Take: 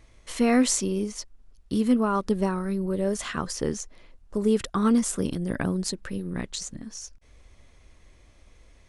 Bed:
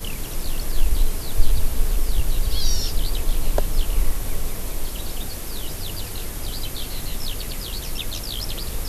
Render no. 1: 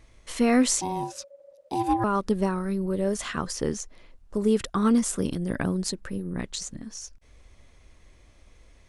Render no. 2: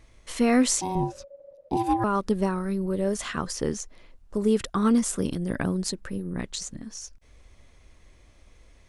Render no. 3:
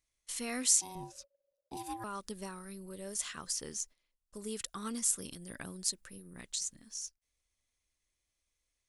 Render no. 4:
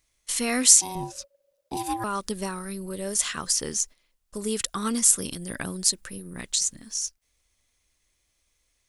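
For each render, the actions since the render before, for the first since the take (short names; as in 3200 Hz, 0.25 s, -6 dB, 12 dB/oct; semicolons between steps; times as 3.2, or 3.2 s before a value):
0.81–2.04 ring modulator 560 Hz; 5.98–6.38 bell 3600 Hz -2.5 dB -> -13 dB 1.6 oct
0.95–1.77 tilt -3.5 dB/oct
gate -42 dBFS, range -15 dB; pre-emphasis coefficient 0.9
gain +12 dB; limiter -1 dBFS, peak gain reduction 2 dB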